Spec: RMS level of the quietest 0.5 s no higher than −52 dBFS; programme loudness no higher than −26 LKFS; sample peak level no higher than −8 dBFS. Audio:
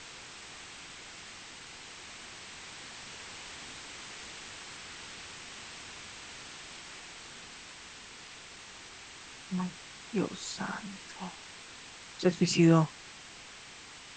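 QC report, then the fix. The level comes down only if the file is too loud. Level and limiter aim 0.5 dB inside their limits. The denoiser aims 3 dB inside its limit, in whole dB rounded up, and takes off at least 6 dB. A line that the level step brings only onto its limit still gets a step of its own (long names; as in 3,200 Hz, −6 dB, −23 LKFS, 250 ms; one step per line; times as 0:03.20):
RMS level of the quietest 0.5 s −50 dBFS: out of spec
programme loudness −36.5 LKFS: in spec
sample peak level −11.0 dBFS: in spec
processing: broadband denoise 6 dB, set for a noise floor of −50 dBFS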